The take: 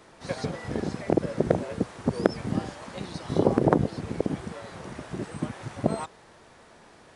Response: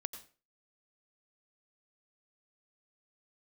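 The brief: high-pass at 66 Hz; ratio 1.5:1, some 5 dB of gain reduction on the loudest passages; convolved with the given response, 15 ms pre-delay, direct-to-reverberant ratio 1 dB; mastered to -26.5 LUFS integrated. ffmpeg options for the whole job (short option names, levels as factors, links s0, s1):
-filter_complex "[0:a]highpass=66,acompressor=threshold=0.0316:ratio=1.5,asplit=2[s0][s1];[1:a]atrim=start_sample=2205,adelay=15[s2];[s1][s2]afir=irnorm=-1:irlink=0,volume=1.06[s3];[s0][s3]amix=inputs=2:normalize=0,volume=1.58"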